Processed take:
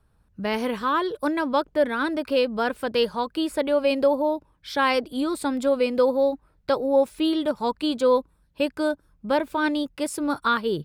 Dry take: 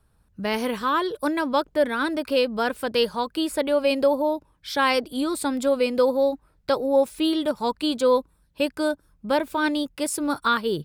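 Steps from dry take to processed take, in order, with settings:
high-shelf EQ 4,700 Hz −7 dB

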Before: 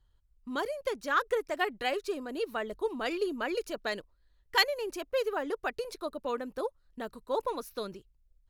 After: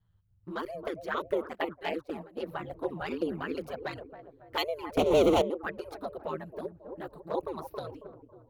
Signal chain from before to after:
delay with a low-pass on its return 274 ms, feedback 35%, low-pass 900 Hz, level −7 dB
ring modulation 79 Hz
0:01.53–0:02.43: noise gate −37 dBFS, range −15 dB
parametric band 7,200 Hz −12 dB 1.8 octaves
0:04.97–0:05.42: leveller curve on the samples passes 5
flanger swept by the level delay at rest 11.8 ms, full sweep at −29 dBFS
0:06.43–0:07.02: parametric band 1,100 Hz −11.5 dB → −1 dB 1.3 octaves
level +4.5 dB

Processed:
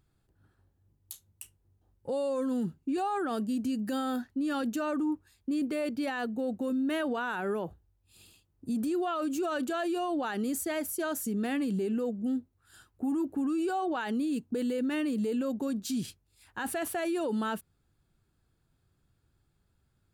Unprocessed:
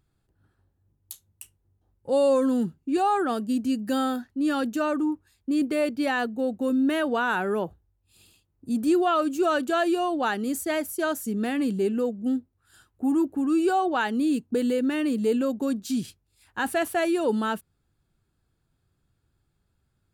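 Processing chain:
brickwall limiter −25 dBFS, peak gain reduction 11 dB

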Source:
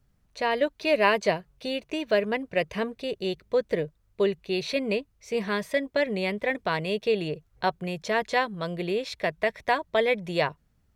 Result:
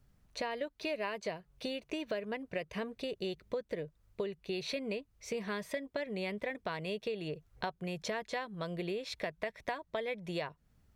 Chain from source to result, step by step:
downward compressor 6 to 1, threshold −35 dBFS, peak gain reduction 18 dB

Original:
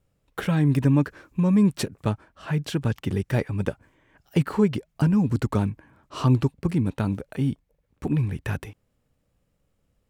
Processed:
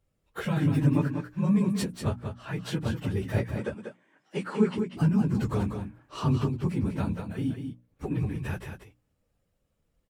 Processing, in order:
random phases in long frames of 50 ms
mains-hum notches 60/120/180/240/300 Hz
0:03.55–0:04.78: Chebyshev band-pass filter 190–9,100 Hz, order 3
single-tap delay 191 ms −7 dB
level −4.5 dB

